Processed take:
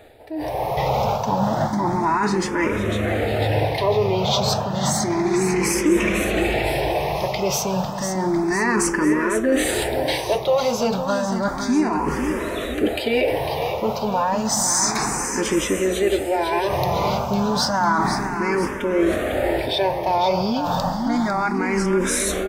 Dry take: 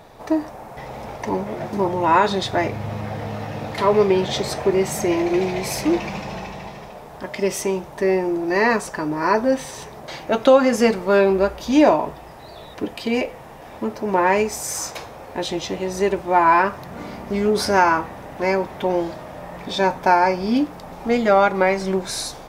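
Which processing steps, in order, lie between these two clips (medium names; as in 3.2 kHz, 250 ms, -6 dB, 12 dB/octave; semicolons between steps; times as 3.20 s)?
reverse; compression 6:1, threshold -30 dBFS, peak gain reduction 20 dB; reverse; peak limiter -25.5 dBFS, peak gain reduction 6.5 dB; level rider gain up to 15.5 dB; in parallel at -11 dB: saturation -23.5 dBFS, distortion -8 dB; on the sum: feedback delay 501 ms, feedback 57%, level -8 dB; barber-pole phaser +0.31 Hz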